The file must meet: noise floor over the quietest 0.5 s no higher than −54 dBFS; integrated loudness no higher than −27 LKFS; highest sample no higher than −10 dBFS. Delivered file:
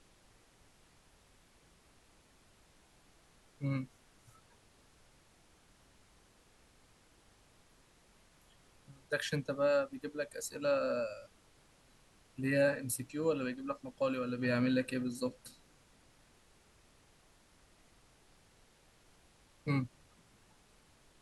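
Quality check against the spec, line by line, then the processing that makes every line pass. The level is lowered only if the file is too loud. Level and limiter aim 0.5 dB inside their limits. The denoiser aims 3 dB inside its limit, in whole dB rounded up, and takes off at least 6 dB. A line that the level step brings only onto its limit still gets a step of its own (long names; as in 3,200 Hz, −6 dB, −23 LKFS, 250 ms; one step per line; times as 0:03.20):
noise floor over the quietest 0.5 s −66 dBFS: in spec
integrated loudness −35.5 LKFS: in spec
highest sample −19.5 dBFS: in spec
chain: no processing needed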